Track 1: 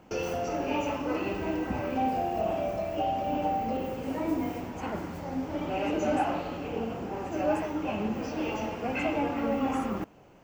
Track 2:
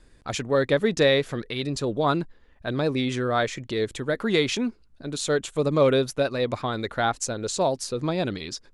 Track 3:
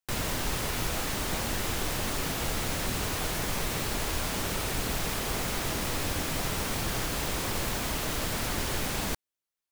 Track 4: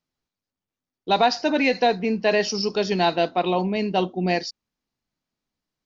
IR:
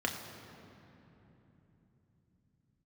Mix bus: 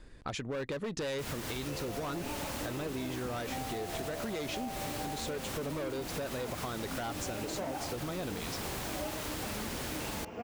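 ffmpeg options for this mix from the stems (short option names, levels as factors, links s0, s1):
-filter_complex "[0:a]adelay=1550,volume=0.501[s0];[1:a]highshelf=f=7200:g=-9.5,volume=1.26[s1];[2:a]highpass=42,adelay=1100,volume=0.944[s2];[s1][s2]amix=inputs=2:normalize=0,asoftclip=type=hard:threshold=0.1,acompressor=threshold=0.0355:ratio=6,volume=1[s3];[s0][s3]amix=inputs=2:normalize=0,acompressor=threshold=0.0178:ratio=4"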